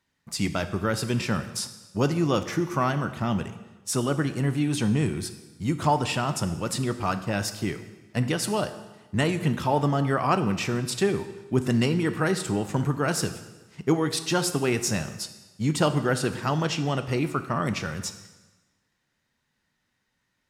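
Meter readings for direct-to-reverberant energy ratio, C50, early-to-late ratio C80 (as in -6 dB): 9.5 dB, 12.0 dB, 13.5 dB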